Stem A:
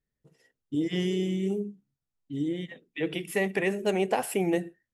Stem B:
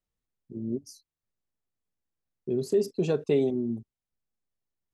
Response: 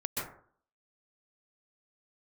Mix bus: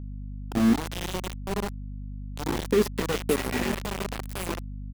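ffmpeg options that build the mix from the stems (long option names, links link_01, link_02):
-filter_complex "[0:a]alimiter=limit=-24dB:level=0:latency=1:release=43,volume=-4.5dB,asplit=3[link_01][link_02][link_03];[link_02]volume=-6.5dB[link_04];[1:a]dynaudnorm=framelen=300:gausssize=3:maxgain=7dB,aecho=1:1:4.1:0.67,acompressor=threshold=-18dB:ratio=6,volume=1dB[link_05];[link_03]apad=whole_len=217726[link_06];[link_05][link_06]sidechaincompress=threshold=-46dB:ratio=12:attack=16:release=243[link_07];[2:a]atrim=start_sample=2205[link_08];[link_04][link_08]afir=irnorm=-1:irlink=0[link_09];[link_01][link_07][link_09]amix=inputs=3:normalize=0,dynaudnorm=framelen=110:gausssize=7:maxgain=3.5dB,aeval=exprs='val(0)*gte(abs(val(0)),0.0668)':channel_layout=same,aeval=exprs='val(0)+0.0178*(sin(2*PI*50*n/s)+sin(2*PI*2*50*n/s)/2+sin(2*PI*3*50*n/s)/3+sin(2*PI*4*50*n/s)/4+sin(2*PI*5*50*n/s)/5)':channel_layout=same"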